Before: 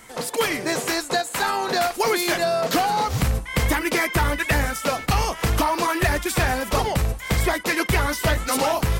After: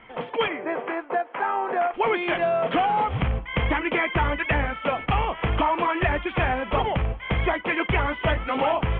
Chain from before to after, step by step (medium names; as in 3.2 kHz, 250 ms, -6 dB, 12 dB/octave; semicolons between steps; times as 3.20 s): rippled Chebyshev low-pass 3.3 kHz, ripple 3 dB; 0.48–1.94 s: three-band isolator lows -20 dB, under 240 Hz, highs -18 dB, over 2.1 kHz